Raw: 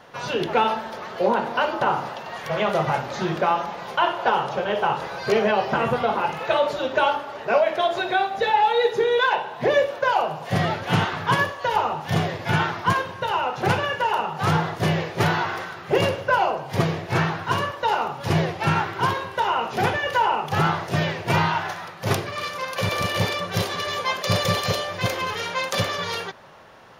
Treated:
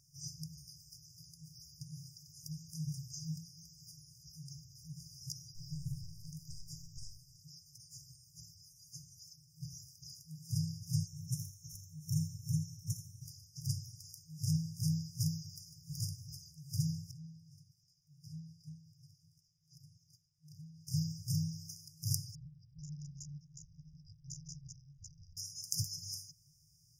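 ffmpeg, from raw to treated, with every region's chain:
-filter_complex "[0:a]asettb=1/sr,asplit=3[s0][s1][s2];[s0]atrim=end=5.554[s3];[s1]atrim=start=5.55:end=7.37,asetpts=PTS-STARTPTS,afade=t=in:d=0.004:c=qsin,afade=t=out:st=1.816:d=0.004:c=qsin,lowshelf=f=330:g=5.5,aeval=exprs='(tanh(6.31*val(0)+0.35)-tanh(0.35))/6.31':c=same[s4];[s2]atrim=start=7.366[s5];[s3][s4]acrossfade=d=0.004:c1=hsin:c2=qsin[s6];[s6][s5]acrossfade=d=0.004:c1=qsin:c2=hsin,asettb=1/sr,asplit=3[s7][s8][s9];[s7]atrim=end=11.064[s10];[s8]atrim=start=11.06:end=13.22,asetpts=PTS-STARTPTS,afade=t=in:d=0.004:c=qsin,afade=t=out:st=2.156:d=0.004:c=qsin,asuperstop=centerf=4700:order=12:qfactor=4,aecho=1:1:83:0.224,atrim=end_sample=95256[s11];[s9]atrim=start=13.216[s12];[s10][s11]acrossfade=d=0.004:c1=hsin:c2=qsin[s13];[s13][s12]acrossfade=d=0.004:c1=qsin:c2=hsin,asettb=1/sr,asplit=3[s14][s15][s16];[s14]atrim=end=17.114[s17];[s15]atrim=start=17.11:end=20.87,asetpts=PTS-STARTPTS,afade=t=in:d=0.004:c=qsin,afade=t=out:st=3.756:d=0.004:c=qsin,acrossover=split=180 3100:gain=0.0794 1 0.112[s18][s19][s20];[s18][s19][s20]amix=inputs=3:normalize=0,acompressor=threshold=0.0501:ratio=10:attack=3.2:release=140:knee=1:detection=peak[s21];[s16]atrim=start=20.866[s22];[s17][s21]acrossfade=d=0.004:c1=hsin:c2=qsin[s23];[s23][s22]acrossfade=d=0.004:c1=qsin:c2=hsin,asettb=1/sr,asplit=3[s24][s25][s26];[s24]atrim=end=22.354[s27];[s25]atrim=start=22.35:end=25.37,asetpts=PTS-STARTPTS,afade=t=in:d=0.004:c=qsin,afade=t=out:st=3.016:d=0.004:c=qsin,lowpass=f=2100:t=q:w=0.5098,lowpass=f=2100:t=q:w=0.6013,lowpass=f=2100:t=q:w=0.9,lowpass=f=2100:t=q:w=2.563,afreqshift=-2500,acontrast=59[s28];[s26]atrim=start=25.366[s29];[s27][s28]acrossfade=d=0.004:c1=hsin:c2=qsin[s30];[s30][s29]acrossfade=d=0.004:c1=qsin:c2=hsin,afftfilt=real='re*(1-between(b*sr/4096,170,4800))':imag='im*(1-between(b*sr/4096,170,4800))':win_size=4096:overlap=0.75,lowshelf=f=270:g=-9,volume=0.794"

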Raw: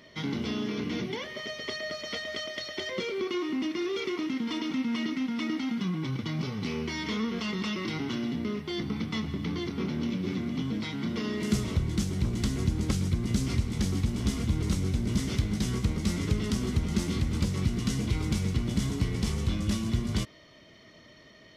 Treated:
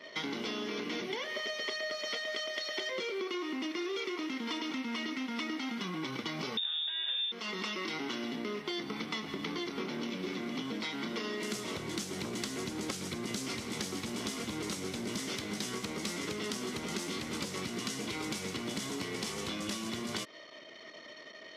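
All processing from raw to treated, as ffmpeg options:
-filter_complex "[0:a]asettb=1/sr,asplit=3[s0][s1][s2];[s0]atrim=end=6.574[s3];[s1]atrim=start=6.57:end=7.32,asetpts=PTS-STARTPTS,afade=t=in:d=0.004:c=qsin,afade=t=out:st=0.746:d=0.004:c=qsin,tiltshelf=f=1300:g=7.5,lowpass=f=3200:t=q:w=0.5098,lowpass=f=3200:t=q:w=0.6013,lowpass=f=3200:t=q:w=0.9,lowpass=f=3200:t=q:w=2.563,afreqshift=-3800[s4];[s2]atrim=start=7.316[s5];[s3][s4]acrossfade=d=0.004:c1=hsin:c2=qsin[s6];[s6][s5]acrossfade=d=0.004:c1=qsin:c2=hsin,highpass=390,anlmdn=0.000251,acompressor=threshold=0.00891:ratio=6,volume=2.24"

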